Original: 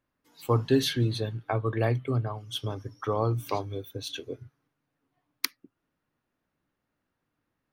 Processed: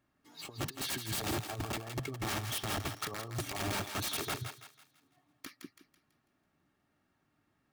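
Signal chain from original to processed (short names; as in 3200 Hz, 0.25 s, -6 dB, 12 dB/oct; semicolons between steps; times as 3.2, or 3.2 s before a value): median filter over 3 samples; negative-ratio compressor -33 dBFS, ratio -0.5; wrapped overs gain 29 dB; notch comb 500 Hz; on a send: thinning echo 0.165 s, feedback 41%, high-pass 680 Hz, level -7 dB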